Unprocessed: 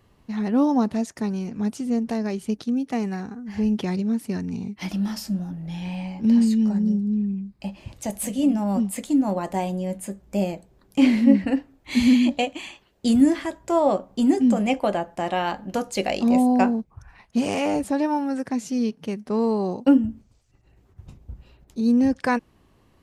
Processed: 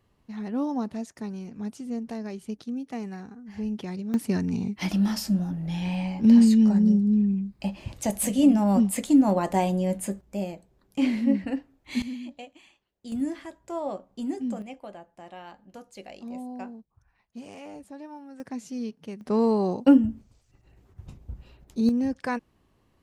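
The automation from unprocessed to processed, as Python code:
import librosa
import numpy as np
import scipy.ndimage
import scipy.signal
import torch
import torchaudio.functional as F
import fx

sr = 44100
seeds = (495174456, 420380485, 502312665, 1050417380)

y = fx.gain(x, sr, db=fx.steps((0.0, -8.5), (4.14, 2.0), (10.21, -7.0), (12.02, -19.0), (13.12, -12.0), (14.62, -19.0), (18.4, -9.0), (19.21, 0.0), (21.89, -7.0)))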